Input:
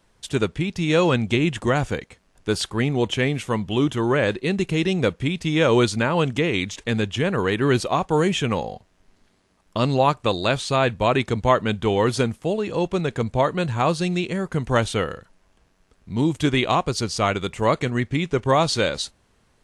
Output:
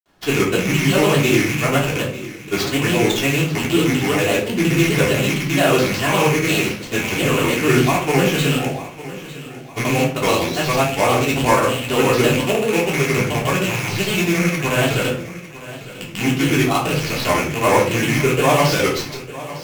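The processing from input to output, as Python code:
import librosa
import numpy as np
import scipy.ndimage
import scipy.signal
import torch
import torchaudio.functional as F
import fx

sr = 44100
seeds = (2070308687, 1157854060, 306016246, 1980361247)

p1 = fx.rattle_buzz(x, sr, strikes_db=-31.0, level_db=-14.0)
p2 = fx.highpass(p1, sr, hz=160.0, slope=6)
p3 = fx.rider(p2, sr, range_db=10, speed_s=0.5)
p4 = p2 + (p3 * 10.0 ** (-1.0 / 20.0))
p5 = fx.sample_hold(p4, sr, seeds[0], rate_hz=9400.0, jitter_pct=20)
p6 = fx.granulator(p5, sr, seeds[1], grain_ms=100.0, per_s=20.0, spray_ms=100.0, spread_st=3)
p7 = fx.echo_feedback(p6, sr, ms=903, feedback_pct=43, wet_db=-16)
p8 = fx.room_shoebox(p7, sr, seeds[2], volume_m3=380.0, walls='furnished', distance_m=3.3)
y = p8 * 10.0 ** (-6.0 / 20.0)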